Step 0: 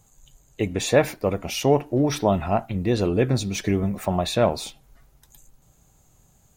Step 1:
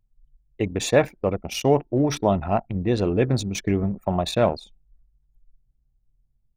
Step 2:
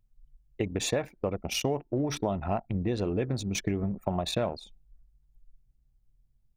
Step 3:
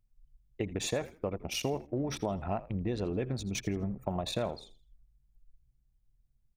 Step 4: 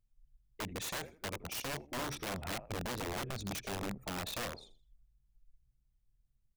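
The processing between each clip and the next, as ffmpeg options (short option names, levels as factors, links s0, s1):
-af "anlmdn=63.1"
-af "acompressor=threshold=0.0501:ratio=6"
-filter_complex "[0:a]asplit=4[s0][s1][s2][s3];[s1]adelay=82,afreqshift=-70,volume=0.141[s4];[s2]adelay=164,afreqshift=-140,volume=0.0437[s5];[s3]adelay=246,afreqshift=-210,volume=0.0136[s6];[s0][s4][s5][s6]amix=inputs=4:normalize=0,volume=0.631"
-af "aeval=exprs='(mod(28.2*val(0)+1,2)-1)/28.2':c=same,volume=0.631"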